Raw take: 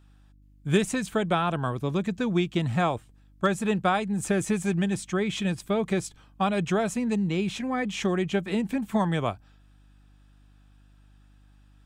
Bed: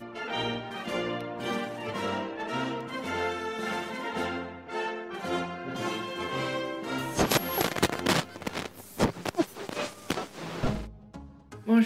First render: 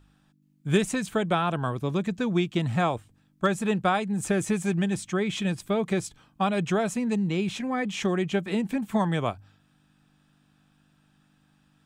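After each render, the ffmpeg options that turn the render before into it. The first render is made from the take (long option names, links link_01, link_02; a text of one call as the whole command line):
ffmpeg -i in.wav -af "bandreject=frequency=50:width_type=h:width=4,bandreject=frequency=100:width_type=h:width=4" out.wav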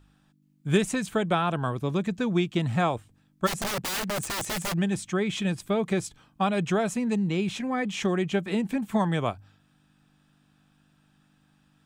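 ffmpeg -i in.wav -filter_complex "[0:a]asplit=3[link_01][link_02][link_03];[link_01]afade=type=out:start_time=3.46:duration=0.02[link_04];[link_02]aeval=exprs='(mod(17.8*val(0)+1,2)-1)/17.8':channel_layout=same,afade=type=in:start_time=3.46:duration=0.02,afade=type=out:start_time=4.72:duration=0.02[link_05];[link_03]afade=type=in:start_time=4.72:duration=0.02[link_06];[link_04][link_05][link_06]amix=inputs=3:normalize=0" out.wav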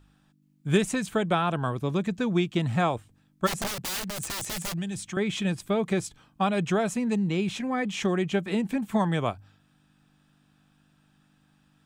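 ffmpeg -i in.wav -filter_complex "[0:a]asettb=1/sr,asplit=3[link_01][link_02][link_03];[link_01]atrim=end=3.674[link_04];[link_02]atrim=start=3.67:end=5.17,asetpts=PTS-STARTPTS,afade=type=in:duration=0.004:curve=qsin,afade=type=out:start_time=1.496:duration=0.004:curve=qsin,acrossover=split=140|3000[link_05][link_06][link_07];[link_06]acompressor=threshold=-34dB:ratio=6:attack=3.2:release=140:knee=2.83:detection=peak[link_08];[link_05][link_08][link_07]amix=inputs=3:normalize=0[link_09];[link_03]atrim=start=5.166[link_10];[link_04][link_09]acrossfade=duration=0.004:curve1=hsin:curve2=qsin[link_11];[link_11][link_10]acrossfade=duration=0.004:curve1=qsin:curve2=hsin" out.wav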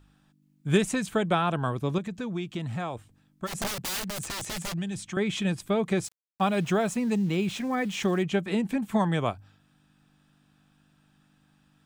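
ffmpeg -i in.wav -filter_complex "[0:a]asettb=1/sr,asplit=3[link_01][link_02][link_03];[link_01]atrim=end=1.984[link_04];[link_02]atrim=start=1.98:end=3.55,asetpts=PTS-STARTPTS,afade=type=in:duration=0.004:curve=qsin,afade=type=out:start_time=1.566:duration=0.004:curve=qsin,acompressor=threshold=-34dB:ratio=2:attack=3.2:release=140:knee=1:detection=peak[link_05];[link_03]atrim=start=3.546[link_06];[link_04][link_05]acrossfade=duration=0.004:curve1=hsin:curve2=qsin[link_07];[link_07][link_06]acrossfade=duration=0.004:curve1=qsin:curve2=hsin,asettb=1/sr,asplit=3[link_08][link_09][link_10];[link_08]atrim=end=4.224[link_11];[link_09]atrim=start=4.22:end=5.12,asetpts=PTS-STARTPTS,afade=type=in:duration=0.004:curve=qsin,afade=type=out:start_time=0.896:duration=0.004:curve=qsin,highshelf=frequency=10000:gain=-7.5[link_12];[link_10]atrim=start=5.116[link_13];[link_11][link_12]acrossfade=duration=0.004:curve1=hsin:curve2=qsin[link_14];[link_14][link_13]acrossfade=duration=0.004:curve1=qsin:curve2=hsin,asettb=1/sr,asplit=3[link_15][link_16][link_17];[link_15]atrim=end=6.044[link_18];[link_16]atrim=start=6.04:end=8.23,asetpts=PTS-STARTPTS,afade=type=in:duration=0.004:curve=qsin,afade=type=out:start_time=2.186:duration=0.004:curve=qsin,aeval=exprs='val(0)*gte(abs(val(0)),0.00708)':channel_layout=same[link_19];[link_17]atrim=start=8.226[link_20];[link_18][link_19]acrossfade=duration=0.004:curve1=hsin:curve2=qsin[link_21];[link_21][link_20]acrossfade=duration=0.004:curve1=qsin:curve2=hsin" out.wav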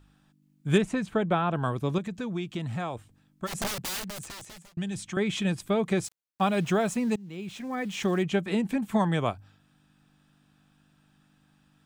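ffmpeg -i in.wav -filter_complex "[0:a]asettb=1/sr,asplit=3[link_01][link_02][link_03];[link_01]atrim=end=0.784[link_04];[link_02]atrim=start=0.78:end=1.56,asetpts=PTS-STARTPTS,afade=type=in:duration=0.004:curve=qsin,afade=type=out:start_time=0.776:duration=0.004:curve=qsin,lowpass=frequency=1800:poles=1[link_05];[link_03]atrim=start=1.556[link_06];[link_04][link_05]acrossfade=duration=0.004:curve1=hsin:curve2=qsin[link_07];[link_07][link_06]acrossfade=duration=0.004:curve1=qsin:curve2=hsin,asplit=3[link_08][link_09][link_10];[link_08]atrim=end=4.77,asetpts=PTS-STARTPTS,afade=type=out:start_time=3.76:duration=1.01[link_11];[link_09]atrim=start=4.77:end=7.16,asetpts=PTS-STARTPTS,afade=type=in:duration=0.004:curve=hsin,afade=type=out:start_time=2.386:duration=0.004:curve=hsin:silence=0.0707946[link_12];[link_10]atrim=start=7.16,asetpts=PTS-STARTPTS,afade=type=in:duration=1.02:silence=0.0707946[link_13];[link_11][link_12][link_13]concat=n=3:v=0:a=1" out.wav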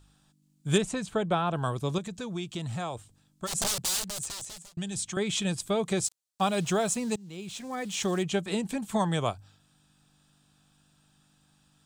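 ffmpeg -i in.wav -af "equalizer=frequency=250:width_type=o:width=1:gain=-5,equalizer=frequency=2000:width_type=o:width=1:gain=-5,equalizer=frequency=4000:width_type=o:width=1:gain=4,equalizer=frequency=8000:width_type=o:width=1:gain=9" out.wav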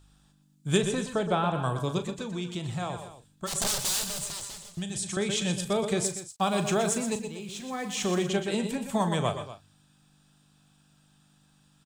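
ffmpeg -i in.wav -filter_complex "[0:a]asplit=2[link_01][link_02];[link_02]adelay=39,volume=-11dB[link_03];[link_01][link_03]amix=inputs=2:normalize=0,asplit=2[link_04][link_05];[link_05]aecho=0:1:119|124|126|240:0.237|0.251|0.126|0.178[link_06];[link_04][link_06]amix=inputs=2:normalize=0" out.wav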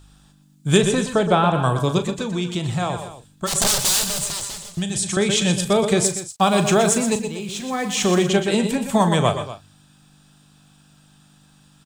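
ffmpeg -i in.wav -af "volume=9.5dB,alimiter=limit=-2dB:level=0:latency=1" out.wav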